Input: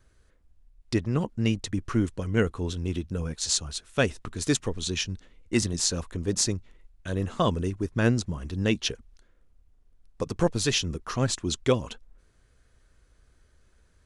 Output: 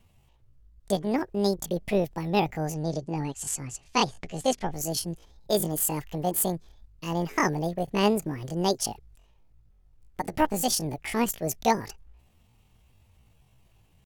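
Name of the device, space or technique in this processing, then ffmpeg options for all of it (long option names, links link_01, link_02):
chipmunk voice: -filter_complex "[0:a]asetrate=78577,aresample=44100,atempo=0.561231,asettb=1/sr,asplit=3[link_01][link_02][link_03];[link_01]atrim=end=2.744[link_04];[link_02]atrim=start=2.74:end=4.73,asetpts=PTS-STARTPTS,afade=type=in:duration=0.004:curve=qsin,afade=type=out:start_time=1.986:duration=0.004:curve=qsin,lowpass=frequency=8900:width=0.5412,lowpass=frequency=8900:width=1.3066[link_05];[link_03]atrim=start=4.726[link_06];[link_04][link_05]acrossfade=duration=0.004:curve1=hsin:curve2=qsin[link_07];[link_07][link_06]acrossfade=duration=0.004:curve1=qsin:curve2=hsin"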